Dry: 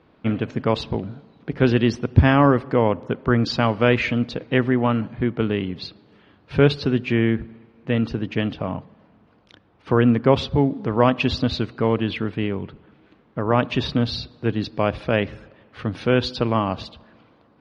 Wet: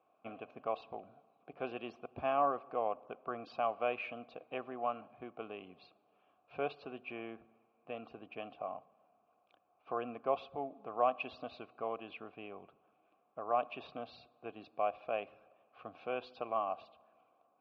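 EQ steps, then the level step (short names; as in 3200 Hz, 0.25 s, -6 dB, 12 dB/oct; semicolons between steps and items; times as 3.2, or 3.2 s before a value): vowel filter a; dynamic EQ 120 Hz, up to -5 dB, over -49 dBFS, Q 0.77; LPF 4000 Hz 6 dB/oct; -4.0 dB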